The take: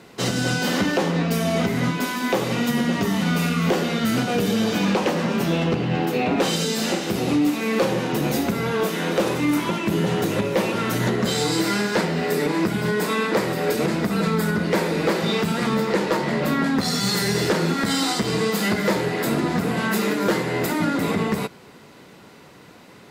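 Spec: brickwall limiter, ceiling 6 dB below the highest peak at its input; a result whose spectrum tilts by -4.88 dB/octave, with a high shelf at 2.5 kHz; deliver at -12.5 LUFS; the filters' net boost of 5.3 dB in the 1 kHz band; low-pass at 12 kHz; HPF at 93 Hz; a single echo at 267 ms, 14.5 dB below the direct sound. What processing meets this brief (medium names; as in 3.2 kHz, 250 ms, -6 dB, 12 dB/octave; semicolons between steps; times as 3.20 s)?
high-pass 93 Hz; low-pass 12 kHz; peaking EQ 1 kHz +8 dB; treble shelf 2.5 kHz -7 dB; peak limiter -13 dBFS; delay 267 ms -14.5 dB; trim +10 dB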